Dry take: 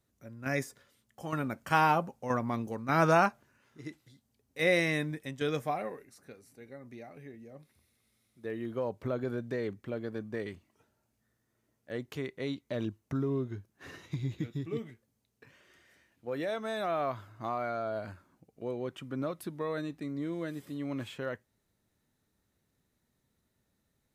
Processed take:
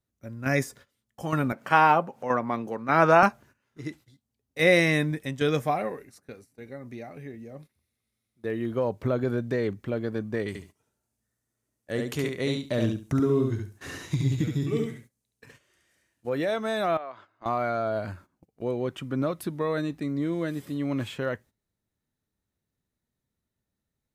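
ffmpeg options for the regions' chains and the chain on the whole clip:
-filter_complex "[0:a]asettb=1/sr,asplit=3[a][b][c];[a]atrim=end=1.524[d];[b]atrim=start=1.52:end=3.23,asetpts=PTS-STARTPTS,afade=t=in:d=0.004:c=qsin,afade=t=out:st=1.706:d=0.004:c=qsin,bass=f=250:g=-15,treble=f=4k:g=-11,acompressor=mode=upward:threshold=-40dB:ratio=2.5:attack=3.2:release=140:knee=2.83:detection=peak,highpass=f=140:t=q:w=1.7[e];[c]atrim=start=3.226[f];[d][e]acrossfade=d=0.004:c1=hsin:c2=qsin[g];[g][f]acrossfade=d=0.004:c1=qsin:c2=hsin,asettb=1/sr,asplit=3[h][i][j];[h]atrim=end=10.484[k];[i]atrim=start=10.48:end=16.29,asetpts=PTS-STARTPTS,afade=t=in:d=0.004:c=qsin,afade=t=out:st=5.806:d=0.004:c=qsin,equalizer=f=8.9k:t=o:w=1.4:g=10,aecho=1:1:70|140|210:0.631|0.126|0.0252,atrim=end_sample=256221[l];[j]atrim=start=16.286[m];[k][l]acrossfade=d=0.004:c1=hsin:c2=qsin[n];[n][m]acrossfade=d=0.004:c1=qsin:c2=hsin,asettb=1/sr,asplit=3[o][p][q];[o]atrim=end=16.974[r];[p]atrim=start=16.97:end=17.46,asetpts=PTS-STARTPTS,afade=t=in:d=0.004:c=qsin,afade=t=out:st=0.486:d=0.004:c=qsin,acompressor=threshold=-50dB:ratio=2:attack=3.2:release=140:knee=1:detection=peak,highpass=390,lowpass=4.1k[s];[q]atrim=start=17.456[t];[r][s]acrossfade=d=0.004:c1=hsin:c2=qsin[u];[u][t]acrossfade=d=0.004:c1=qsin:c2=hsin,agate=range=-15dB:threshold=-56dB:ratio=16:detection=peak,lowshelf=f=140:g=4.5,volume=6.5dB"

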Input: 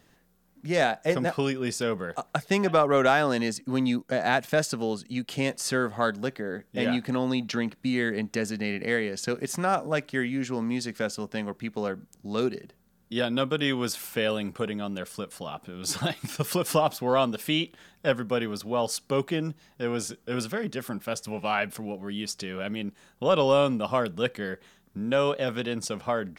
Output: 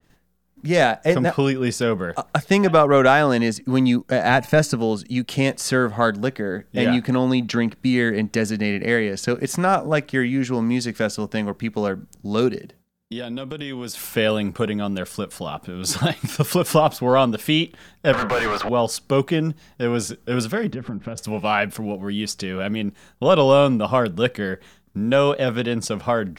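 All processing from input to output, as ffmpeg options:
-filter_complex "[0:a]asettb=1/sr,asplit=3[a][b][c];[a]atrim=end=4.304[d];[b]atrim=start=4.3:end=4.76,asetpts=PTS-STARTPTS,afade=t=in:d=0.004:c=qsin,afade=t=out:st=0.456:d=0.004:c=qsin,asuperstop=centerf=3300:order=20:qfactor=7.9,lowshelf=f=130:g=7.5,bandreject=f=290:t=h:w=4,bandreject=f=580:t=h:w=4,bandreject=f=870:t=h:w=4,bandreject=f=1.16k:t=h:w=4[e];[c]atrim=start=4.756[f];[d][e]acrossfade=d=0.004:c1=hsin:c2=qsin[g];[g][f]acrossfade=d=0.004:c1=qsin:c2=hsin,asettb=1/sr,asplit=3[h][i][j];[h]atrim=end=12.584[k];[i]atrim=start=12.58:end=13.98,asetpts=PTS-STARTPTS,afade=t=in:d=0.004:c=qsin,afade=t=out:st=1.396:d=0.004:c=qsin,highpass=100,equalizer=f=1.3k:t=o:w=0.56:g=-4.5,acompressor=threshold=-34dB:ratio=6:attack=3.2:release=140:knee=1:detection=peak[l];[j]atrim=start=13.976[m];[k][l]acrossfade=d=0.004:c1=hsin:c2=qsin[n];[n][m]acrossfade=d=0.004:c1=qsin:c2=hsin,asettb=1/sr,asplit=3[o][p][q];[o]atrim=end=18.134[r];[p]atrim=start=18.13:end=18.69,asetpts=PTS-STARTPTS,afade=t=in:d=0.004:c=qsin,afade=t=out:st=0.556:d=0.004:c=qsin,acrossover=split=550 2800:gain=0.141 1 0.112[s][t][u];[s][t][u]amix=inputs=3:normalize=0,asplit=2[v][w];[w]highpass=f=720:p=1,volume=36dB,asoftclip=type=tanh:threshold=-20.5dB[x];[v][x]amix=inputs=2:normalize=0,lowpass=f=2.3k:p=1,volume=-6dB[y];[q]atrim=start=18.686[z];[r][y]acrossfade=d=0.004:c1=hsin:c2=qsin[aa];[aa][z]acrossfade=d=0.004:c1=qsin:c2=hsin,asettb=1/sr,asplit=3[ab][ac][ad];[ab]atrim=end=20.724[ae];[ac]atrim=start=20.72:end=21.18,asetpts=PTS-STARTPTS,afade=t=in:d=0.004:c=qsin,afade=t=out:st=0.456:d=0.004:c=qsin,lowpass=2.6k,lowshelf=f=380:g=11.5,acompressor=threshold=-34dB:ratio=6:attack=3.2:release=140:knee=1:detection=peak[af];[ad]atrim=start=21.176[ag];[ae][af]acrossfade=d=0.004:c1=hsin:c2=qsin[ah];[ah][ag]acrossfade=d=0.004:c1=qsin:c2=hsin,lowshelf=f=100:g=9.5,agate=range=-33dB:threshold=-52dB:ratio=3:detection=peak,adynamicequalizer=threshold=0.01:dfrequency=3200:dqfactor=0.7:tfrequency=3200:tqfactor=0.7:attack=5:release=100:ratio=0.375:range=2:mode=cutabove:tftype=highshelf,volume=6.5dB"

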